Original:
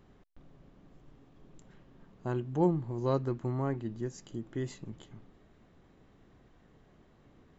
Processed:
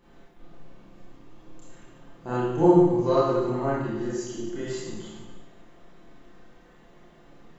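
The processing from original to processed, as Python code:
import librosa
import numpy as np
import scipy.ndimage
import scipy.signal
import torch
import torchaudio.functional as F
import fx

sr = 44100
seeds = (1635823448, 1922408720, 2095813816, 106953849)

y = fx.peak_eq(x, sr, hz=89.0, db=-9.0, octaves=2.2)
y = y + 0.45 * np.pad(y, (int(5.8 * sr / 1000.0), 0))[:len(y)]
y = fx.rev_schroeder(y, sr, rt60_s=1.1, comb_ms=25, drr_db=-9.5)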